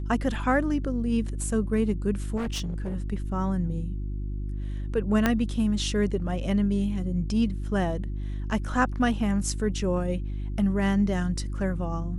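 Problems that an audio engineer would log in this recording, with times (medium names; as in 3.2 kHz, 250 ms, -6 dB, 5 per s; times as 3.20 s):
hum 50 Hz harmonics 7 -31 dBFS
2.36–2.96 s: clipped -26.5 dBFS
5.26 s: pop -8 dBFS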